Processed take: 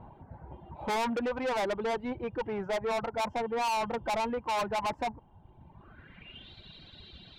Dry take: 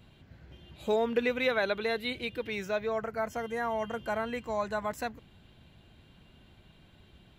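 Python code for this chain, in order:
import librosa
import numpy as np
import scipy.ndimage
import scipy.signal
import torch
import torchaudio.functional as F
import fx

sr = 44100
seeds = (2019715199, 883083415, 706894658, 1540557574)

y = fx.dereverb_blind(x, sr, rt60_s=1.2)
y = fx.filter_sweep_lowpass(y, sr, from_hz=900.0, to_hz=4100.0, start_s=5.71, end_s=6.53, q=6.7)
y = 10.0 ** (-34.5 / 20.0) * np.tanh(y / 10.0 ** (-34.5 / 20.0))
y = y * librosa.db_to_amplitude(6.5)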